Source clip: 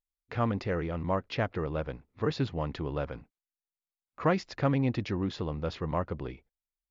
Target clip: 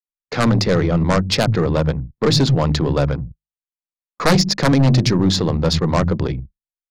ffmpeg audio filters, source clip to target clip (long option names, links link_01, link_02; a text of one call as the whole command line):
ffmpeg -i in.wav -filter_complex "[0:a]bandreject=frequency=50:width_type=h:width=6,bandreject=frequency=100:width_type=h:width=6,bandreject=frequency=150:width_type=h:width=6,bandreject=frequency=200:width_type=h:width=6,bandreject=frequency=250:width_type=h:width=6,bandreject=frequency=300:width_type=h:width=6,bandreject=frequency=350:width_type=h:width=6,agate=range=-25dB:threshold=-46dB:ratio=16:detection=peak,equalizer=frequency=160:width_type=o:width=0.94:gain=9,acrossover=split=150[link_01][link_02];[link_01]adelay=90[link_03];[link_03][link_02]amix=inputs=2:normalize=0,aeval=exprs='0.355*sin(PI/2*3.55*val(0)/0.355)':channel_layout=same,aeval=exprs='0.376*(cos(1*acos(clip(val(0)/0.376,-1,1)))-cos(1*PI/2))+0.0237*(cos(4*acos(clip(val(0)/0.376,-1,1)))-cos(4*PI/2))':channel_layout=same,aexciter=amount=3.7:drive=7.5:freq=4000,anlmdn=39.8" out.wav